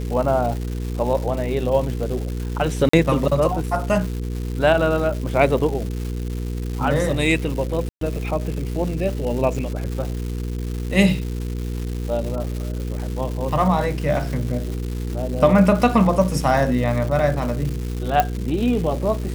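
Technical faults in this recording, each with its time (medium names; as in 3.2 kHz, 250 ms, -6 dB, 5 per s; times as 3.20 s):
crackle 390 per s -28 dBFS
hum 60 Hz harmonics 8 -26 dBFS
2.89–2.93 s: dropout 44 ms
7.89–8.01 s: dropout 123 ms
18.20 s: pop -4 dBFS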